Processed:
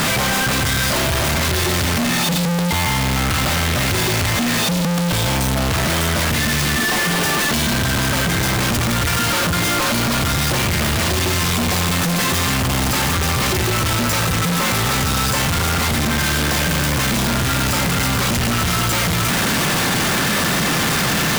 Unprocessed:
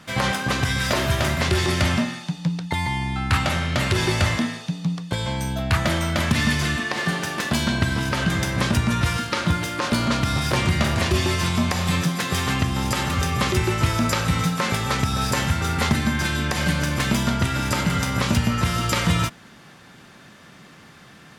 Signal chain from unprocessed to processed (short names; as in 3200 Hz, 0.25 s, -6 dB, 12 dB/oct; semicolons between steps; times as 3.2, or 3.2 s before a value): infinite clipping; gain +4.5 dB